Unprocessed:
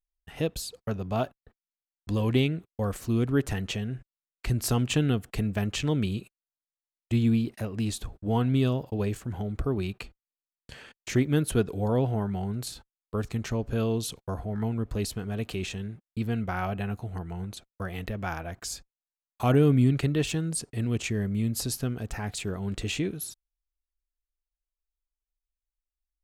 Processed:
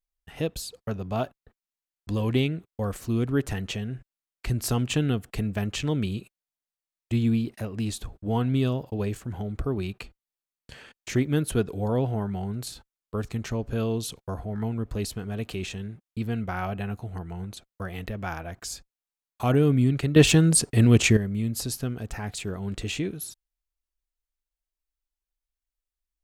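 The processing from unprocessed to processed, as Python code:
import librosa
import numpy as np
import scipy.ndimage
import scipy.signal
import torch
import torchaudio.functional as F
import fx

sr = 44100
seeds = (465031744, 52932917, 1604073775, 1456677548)

y = fx.edit(x, sr, fx.clip_gain(start_s=20.16, length_s=1.01, db=11.0), tone=tone)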